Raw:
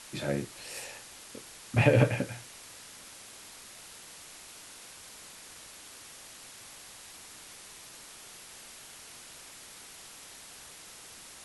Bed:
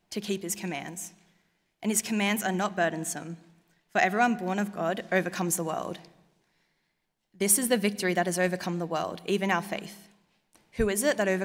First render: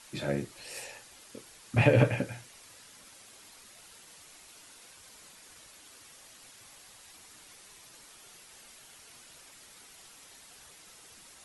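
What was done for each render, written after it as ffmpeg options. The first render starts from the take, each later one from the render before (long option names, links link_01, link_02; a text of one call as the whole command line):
ffmpeg -i in.wav -af "afftdn=noise_reduction=7:noise_floor=-50" out.wav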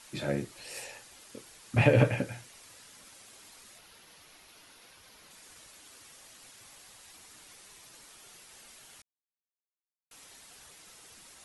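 ffmpeg -i in.wav -filter_complex "[0:a]asettb=1/sr,asplit=3[link_01][link_02][link_03];[link_01]atrim=end=3.784[link_04];[link_02]atrim=start=3.78:end=5.31,asetpts=PTS-STARTPTS,afade=type=in:duration=0.004:curve=qsin,afade=type=out:start_time=1.526:duration=0.004:curve=qsin,equalizer=frequency=7900:width=1.9:gain=-10.5[link_05];[link_03]atrim=start=5.306[link_06];[link_04][link_05]acrossfade=duration=0.004:curve1=hsin:curve2=qsin[link_07];[link_07][link_06]acrossfade=duration=0.004:curve1=qsin:curve2=hsin,asplit=3[link_08][link_09][link_10];[link_08]atrim=end=9.02,asetpts=PTS-STARTPTS,afade=type=out:start_time=9.016:duration=0.004:curve=hsin[link_11];[link_09]atrim=start=9.02:end=10.11,asetpts=PTS-STARTPTS,volume=0[link_12];[link_10]atrim=start=10.11,asetpts=PTS-STARTPTS,afade=type=in:duration=0.004:curve=hsin[link_13];[link_11][link_12][link_13]concat=n=3:v=0:a=1" out.wav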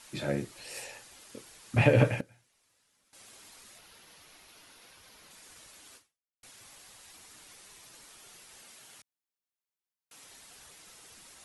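ffmpeg -i in.wav -filter_complex "[0:a]asettb=1/sr,asplit=3[link_01][link_02][link_03];[link_01]atrim=end=8.644[link_04];[link_02]atrim=start=8.64:end=10.24,asetpts=PTS-STARTPTS,afade=type=in:duration=0.004:curve=qsin,afade=type=out:start_time=1.596:duration=0.004:curve=qsin,highpass=92[link_05];[link_03]atrim=start=10.236[link_06];[link_04][link_05]acrossfade=duration=0.004:curve1=hsin:curve2=qsin[link_07];[link_07][link_06]acrossfade=duration=0.004:curve1=qsin:curve2=hsin,asplit=4[link_08][link_09][link_10][link_11];[link_08]atrim=end=2.21,asetpts=PTS-STARTPTS,afade=type=out:start_time=2.04:duration=0.17:curve=log:silence=0.11885[link_12];[link_09]atrim=start=2.21:end=3.13,asetpts=PTS-STARTPTS,volume=-18.5dB[link_13];[link_10]atrim=start=3.13:end=6.43,asetpts=PTS-STARTPTS,afade=type=in:duration=0.17:curve=log:silence=0.11885,afade=type=out:start_time=2.83:duration=0.47:curve=exp[link_14];[link_11]atrim=start=6.43,asetpts=PTS-STARTPTS,afade=type=in:duration=0.004:curve=hsin[link_15];[link_12][link_13][link_14][link_15]concat=n=4:v=0:a=1" out.wav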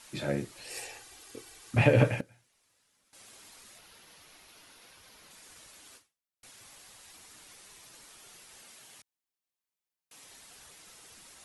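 ffmpeg -i in.wav -filter_complex "[0:a]asettb=1/sr,asplit=3[link_01][link_02][link_03];[link_01]atrim=end=0.704[link_04];[link_02]atrim=start=0.7:end=1.71,asetpts=PTS-STARTPTS,afade=type=in:duration=0.004:curve=qsin,afade=type=out:start_time=1.006:duration=0.004:curve=qsin,aecho=1:1:2.6:0.59,atrim=end_sample=44541[link_05];[link_03]atrim=start=1.706[link_06];[link_04][link_05]acrossfade=duration=0.004:curve1=hsin:curve2=qsin[link_07];[link_07][link_06]acrossfade=duration=0.004:curve1=qsin:curve2=hsin,asettb=1/sr,asplit=3[link_08][link_09][link_10];[link_08]atrim=end=8.834[link_11];[link_09]atrim=start=8.83:end=10.3,asetpts=PTS-STARTPTS,afade=type=in:duration=0.004:curve=qsin,afade=type=out:start_time=1.466:duration=0.004:curve=qsin,bandreject=frequency=1400:width=12[link_12];[link_10]atrim=start=10.296[link_13];[link_11][link_12]acrossfade=duration=0.004:curve1=hsin:curve2=qsin[link_14];[link_14][link_13]acrossfade=duration=0.004:curve1=qsin:curve2=hsin" out.wav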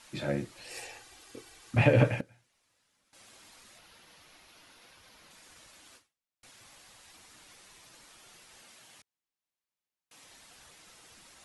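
ffmpeg -i in.wav -af "highshelf=frequency=8200:gain=-8.5,bandreject=frequency=420:width=12" out.wav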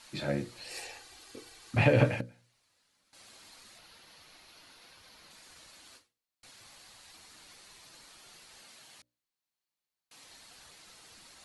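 ffmpeg -i in.wav -af "equalizer=frequency=4300:width=5.4:gain=6.5,bandreject=frequency=60:width_type=h:width=6,bandreject=frequency=120:width_type=h:width=6,bandreject=frequency=180:width_type=h:width=6,bandreject=frequency=240:width_type=h:width=6,bandreject=frequency=300:width_type=h:width=6,bandreject=frequency=360:width_type=h:width=6,bandreject=frequency=420:width_type=h:width=6,bandreject=frequency=480:width_type=h:width=6,bandreject=frequency=540:width_type=h:width=6,bandreject=frequency=600:width_type=h:width=6" out.wav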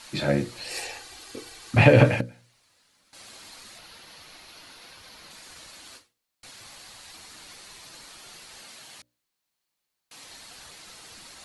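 ffmpeg -i in.wav -af "volume=8.5dB,alimiter=limit=-2dB:level=0:latency=1" out.wav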